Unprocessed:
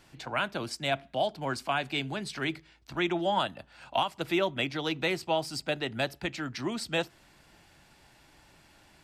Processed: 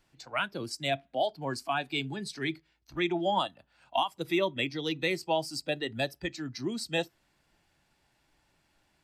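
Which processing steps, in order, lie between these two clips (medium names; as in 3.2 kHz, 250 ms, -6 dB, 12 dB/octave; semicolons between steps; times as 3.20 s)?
spectral noise reduction 12 dB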